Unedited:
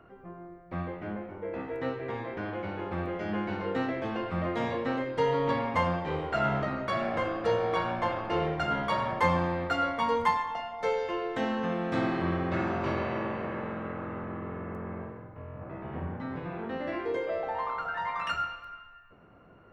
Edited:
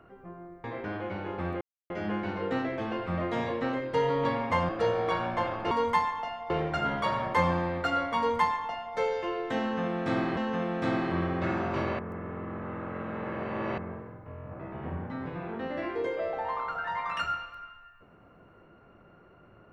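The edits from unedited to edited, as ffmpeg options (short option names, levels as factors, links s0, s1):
-filter_complex "[0:a]asplit=9[s0][s1][s2][s3][s4][s5][s6][s7][s8];[s0]atrim=end=0.642[s9];[s1]atrim=start=2.168:end=3.14,asetpts=PTS-STARTPTS,afade=t=out:st=0.968:d=0.004:c=hsin,apad=pad_dur=0.29[s10];[s2]atrim=start=3.14:end=5.932,asetpts=PTS-STARTPTS,afade=t=in:d=0.004:c=hsin[s11];[s3]atrim=start=7.338:end=8.362[s12];[s4]atrim=start=10.028:end=10.822[s13];[s5]atrim=start=8.358:end=12.232[s14];[s6]atrim=start=11.468:end=13.092[s15];[s7]atrim=start=13.088:end=14.882,asetpts=PTS-STARTPTS,areverse[s16];[s8]atrim=start=14.878[s17];[s10][s11]concat=n=2:v=0:a=1[s18];[s9][s18]acrossfade=d=0.004:c1=hsin:c2=hsin[s19];[s19][s12]acrossfade=d=0.004:c1=hsin:c2=hsin[s20];[s20][s13]acrossfade=d=0.004:c1=hsin:c2=hsin[s21];[s21][s14]acrossfade=d=0.004:c1=hsin:c2=hsin[s22];[s22][s15]acrossfade=d=0.004:c1=hsin:c2=hsin[s23];[s23][s16]acrossfade=d=0.004:c1=hsin:c2=hsin[s24];[s24][s17]acrossfade=d=0.004:c1=hsin:c2=hsin"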